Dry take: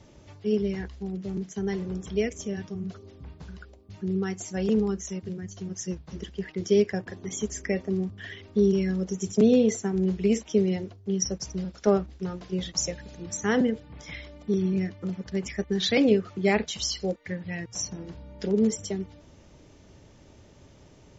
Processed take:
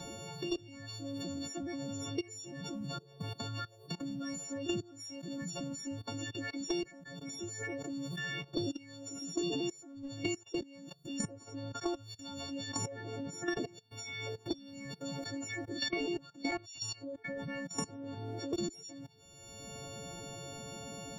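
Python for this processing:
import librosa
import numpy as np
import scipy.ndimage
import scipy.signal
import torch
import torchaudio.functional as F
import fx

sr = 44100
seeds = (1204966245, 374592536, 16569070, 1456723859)

y = fx.freq_snap(x, sr, grid_st=4)
y = fx.peak_eq(y, sr, hz=2300.0, db=-8.5, octaves=1.0)
y = fx.level_steps(y, sr, step_db=23)
y = fx.pitch_keep_formants(y, sr, semitones=8.0)
y = fx.band_squash(y, sr, depth_pct=100)
y = y * 10.0 ** (-4.5 / 20.0)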